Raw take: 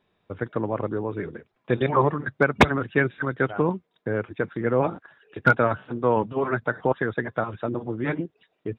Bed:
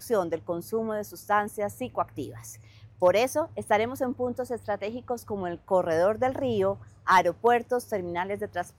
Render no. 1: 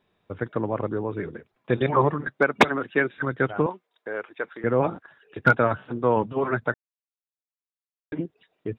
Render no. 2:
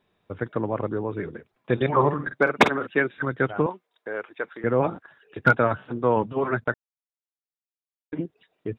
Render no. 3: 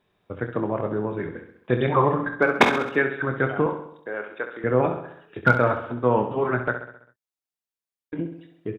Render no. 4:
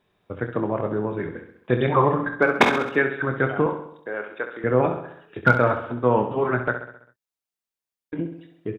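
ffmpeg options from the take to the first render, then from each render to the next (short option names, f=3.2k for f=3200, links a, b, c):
-filter_complex "[0:a]asettb=1/sr,asplit=3[a][b][c];[a]atrim=end=2.274[d];[b]atrim=start=2.27:end=3.16,asetpts=PTS-STARTPTS,afade=t=in:d=0.004:c=qsin,afade=t=out:st=0.886:d=0.004:c=qsin,highpass=240[e];[c]atrim=start=3.156[f];[d][e]acrossfade=d=0.004:c1=hsin:c2=qsin[g];[g][f]acrossfade=d=0.004:c1=qsin:c2=hsin,asettb=1/sr,asplit=3[h][i][j];[h]atrim=end=3.664[k];[i]atrim=start=3.66:end=4.64,asetpts=PTS-STARTPTS,afade=t=in:d=0.004:c=qsin,afade=t=out:st=0.976:d=0.004:c=qsin,highpass=550[l];[j]atrim=start=4.636[m];[k][l]acrossfade=d=0.004:c1=hsin:c2=qsin[n];[n][m]acrossfade=d=0.004:c1=qsin:c2=hsin,asplit=3[o][p][q];[o]atrim=end=6.74,asetpts=PTS-STARTPTS,afade=t=out:st=6.736:d=0.004:c=hsin[r];[p]atrim=start=6.74:end=8.12,asetpts=PTS-STARTPTS,volume=0[s];[q]atrim=start=8.12,asetpts=PTS-STARTPTS,afade=t=in:d=0.004:c=hsin[t];[r][s][t]concat=n=3:v=0:a=1"
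-filter_complex "[0:a]asettb=1/sr,asplit=3[a][b][c];[a]atrim=end=1.954[d];[b]atrim=start=1.95:end=2.87,asetpts=PTS-STARTPTS,afade=t=in:d=0.004:c=qsin,afade=t=out:st=0.916:d=0.004:c=qsin,asplit=2[e][f];[f]adelay=49,volume=-10dB[g];[e][g]amix=inputs=2:normalize=0,atrim=end_sample=40572[h];[c]atrim=start=2.866[i];[d][h]acrossfade=d=0.004:c1=hsin:c2=qsin[j];[j][i]acrossfade=d=0.004:c1=qsin:c2=hsin,asettb=1/sr,asplit=3[k][l][m];[k]atrim=end=6.644[n];[l]atrim=start=6.64:end=8.24,asetpts=PTS-STARTPTS,afade=t=in:d=0.004:c=qsin,afade=t=out:st=1.596:d=0.004:c=qsin,agate=range=-19dB:threshold=-37dB:ratio=16:release=100:detection=peak[o];[m]atrim=start=8.236[p];[n][o]acrossfade=d=0.004:c1=hsin:c2=qsin[q];[q][p]acrossfade=d=0.004:c1=qsin:c2=hsin"
-filter_complex "[0:a]asplit=2[a][b];[b]adelay=24,volume=-9dB[c];[a][c]amix=inputs=2:normalize=0,aecho=1:1:66|132|198|264|330|396:0.355|0.192|0.103|0.0559|0.0302|0.0163"
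-af "volume=1dB,alimiter=limit=-3dB:level=0:latency=1"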